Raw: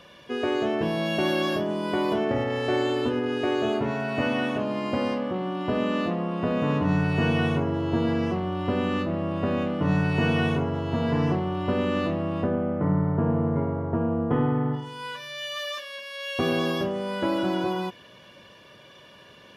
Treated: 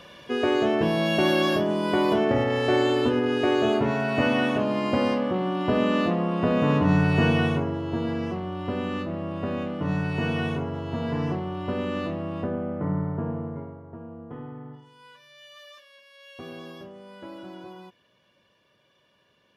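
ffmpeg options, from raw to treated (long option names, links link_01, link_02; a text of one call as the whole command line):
ffmpeg -i in.wav -af "volume=3dB,afade=type=out:start_time=7.19:duration=0.63:silence=0.473151,afade=type=out:start_time=12.99:duration=0.82:silence=0.251189" out.wav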